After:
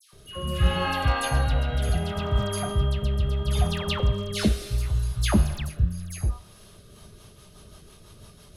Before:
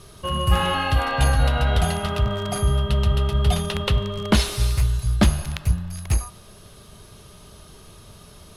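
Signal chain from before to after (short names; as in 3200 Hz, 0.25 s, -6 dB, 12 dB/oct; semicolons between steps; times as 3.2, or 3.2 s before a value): dispersion lows, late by 0.13 s, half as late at 1700 Hz; rotary speaker horn 0.7 Hz, later 6 Hz, at 6.45; gain -2 dB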